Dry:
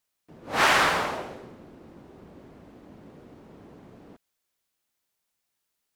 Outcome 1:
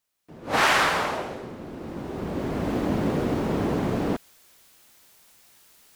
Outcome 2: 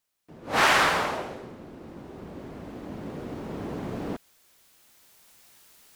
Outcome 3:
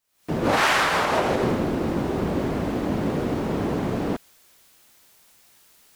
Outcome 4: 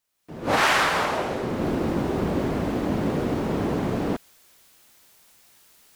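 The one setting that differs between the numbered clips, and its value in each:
camcorder AGC, rising by: 13, 5.3, 80, 33 dB per second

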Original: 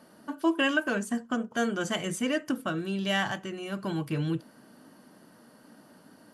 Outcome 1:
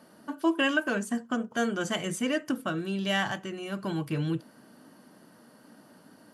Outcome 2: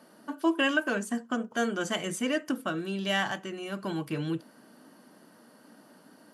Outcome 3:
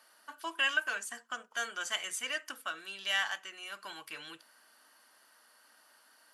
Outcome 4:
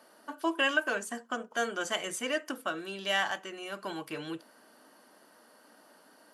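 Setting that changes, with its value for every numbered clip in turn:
high-pass filter, corner frequency: 46, 180, 1,300, 470 Hertz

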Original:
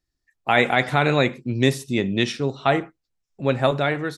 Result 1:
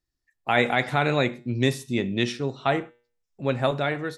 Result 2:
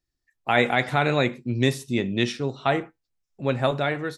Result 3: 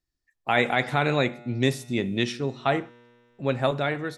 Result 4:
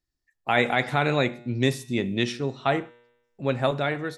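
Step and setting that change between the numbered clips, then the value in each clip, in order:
tuned comb filter, decay: 0.44, 0.17, 2.2, 0.95 seconds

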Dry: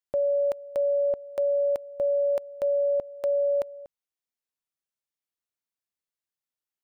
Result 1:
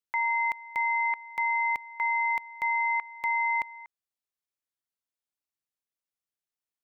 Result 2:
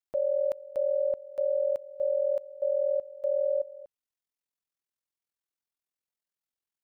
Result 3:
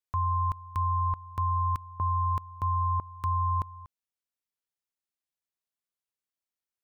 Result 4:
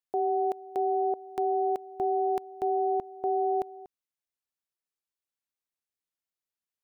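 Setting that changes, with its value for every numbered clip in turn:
ring modulation, frequency: 1,500, 21, 480, 180 Hertz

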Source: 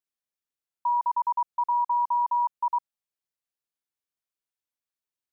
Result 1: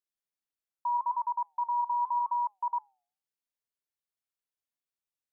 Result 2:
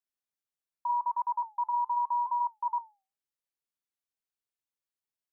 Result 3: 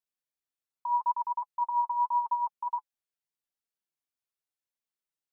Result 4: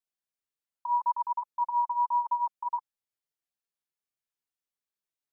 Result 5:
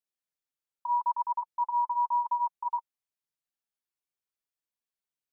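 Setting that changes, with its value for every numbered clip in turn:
flanger, regen: +89, −84, +27, +5, −18%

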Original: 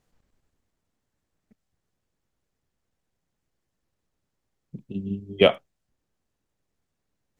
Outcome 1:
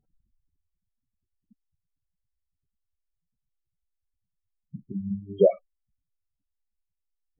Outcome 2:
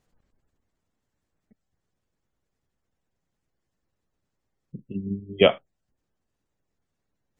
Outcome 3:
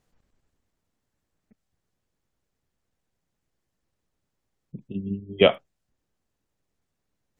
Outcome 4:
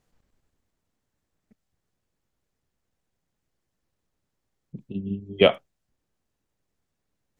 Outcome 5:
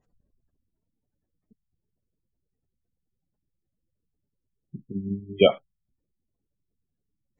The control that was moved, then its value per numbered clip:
gate on every frequency bin, under each frame's peak: −10, −35, −45, −60, −20 decibels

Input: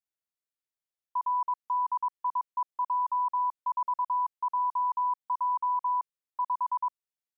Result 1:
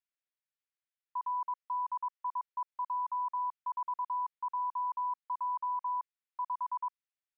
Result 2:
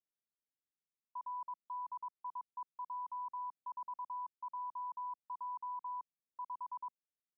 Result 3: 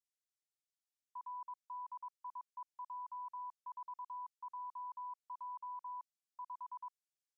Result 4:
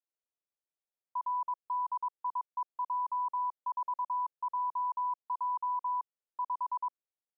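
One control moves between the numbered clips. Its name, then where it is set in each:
resonant band-pass, frequency: 2,000, 210, 6,400, 540 Hertz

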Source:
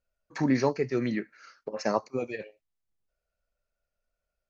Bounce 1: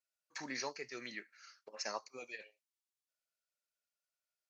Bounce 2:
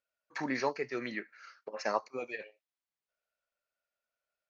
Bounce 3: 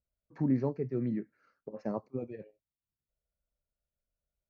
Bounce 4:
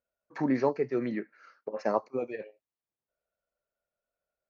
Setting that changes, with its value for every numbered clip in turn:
resonant band-pass, frequency: 7,200, 2,000, 100, 600 Hertz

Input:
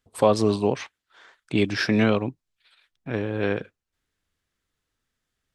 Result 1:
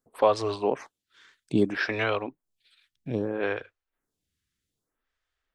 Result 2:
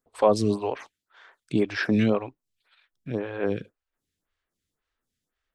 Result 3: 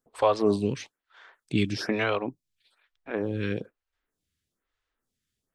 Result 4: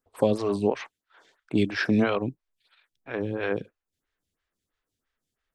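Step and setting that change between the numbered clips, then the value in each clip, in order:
phaser with staggered stages, speed: 0.62, 1.9, 1.1, 3 Hertz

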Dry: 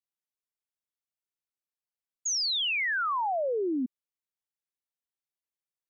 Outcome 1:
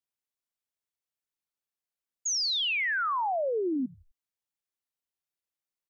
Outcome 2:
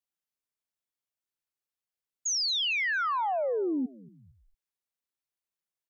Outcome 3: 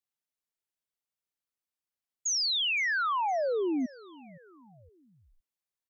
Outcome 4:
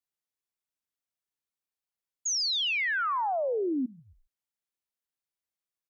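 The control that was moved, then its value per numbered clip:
echo with shifted repeats, delay time: 84, 227, 515, 136 milliseconds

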